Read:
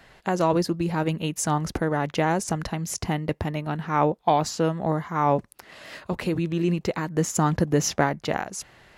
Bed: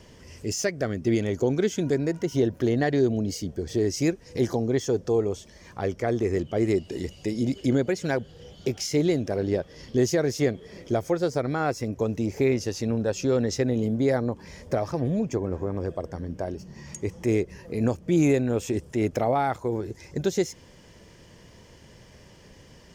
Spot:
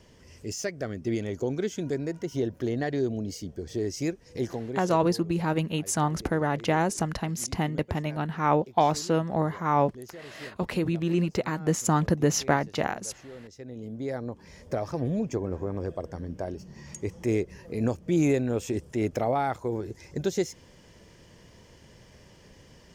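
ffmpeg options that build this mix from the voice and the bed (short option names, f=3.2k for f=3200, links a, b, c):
-filter_complex "[0:a]adelay=4500,volume=-1.5dB[a];[1:a]volume=13.5dB,afade=t=out:st=4.39:d=0.66:silence=0.158489,afade=t=in:st=13.54:d=1.5:silence=0.112202[b];[a][b]amix=inputs=2:normalize=0"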